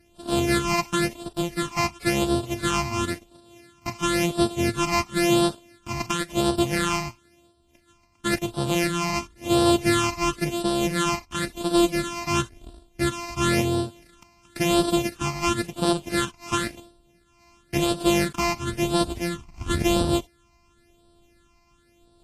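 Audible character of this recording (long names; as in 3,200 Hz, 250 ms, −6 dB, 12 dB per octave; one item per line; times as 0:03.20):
a buzz of ramps at a fixed pitch in blocks of 128 samples
phaser sweep stages 8, 0.96 Hz, lowest notch 460–2,100 Hz
Ogg Vorbis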